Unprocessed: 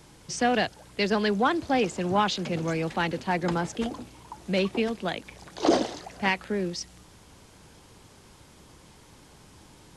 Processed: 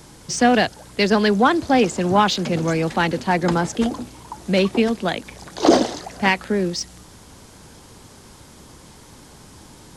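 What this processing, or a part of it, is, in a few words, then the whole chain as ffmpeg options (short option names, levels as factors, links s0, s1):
exciter from parts: -filter_complex "[0:a]asplit=2[s0][s1];[s1]highpass=f=2400:w=0.5412,highpass=f=2400:w=1.3066,asoftclip=type=tanh:threshold=0.0211,volume=0.355[s2];[s0][s2]amix=inputs=2:normalize=0,equalizer=f=240:w=6.4:g=3.5,volume=2.37"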